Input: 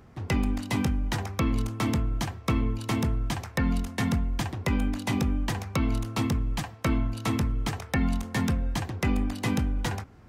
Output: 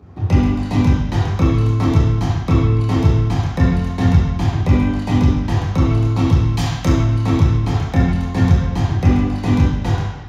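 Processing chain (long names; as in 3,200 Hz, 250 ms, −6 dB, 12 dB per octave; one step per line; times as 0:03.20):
0:06.44–0:06.85: high-shelf EQ 2,300 Hz +11.5 dB
convolution reverb RT60 1.0 s, pre-delay 3 ms, DRR −6 dB
level −7.5 dB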